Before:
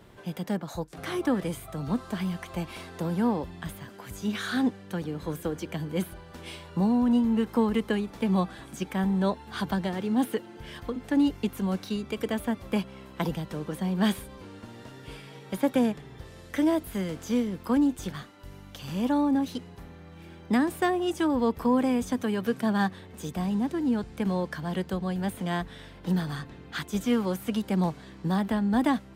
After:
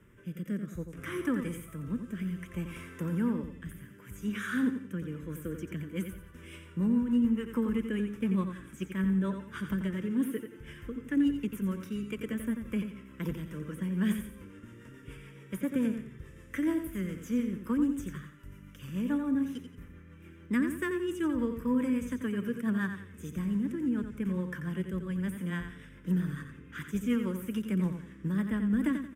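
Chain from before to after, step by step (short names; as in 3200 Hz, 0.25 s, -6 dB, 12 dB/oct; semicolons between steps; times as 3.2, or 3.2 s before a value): fixed phaser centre 1800 Hz, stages 4; rotary speaker horn 0.6 Hz, later 7 Hz, at 4.68; feedback echo 88 ms, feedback 32%, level -8 dB; gain -1.5 dB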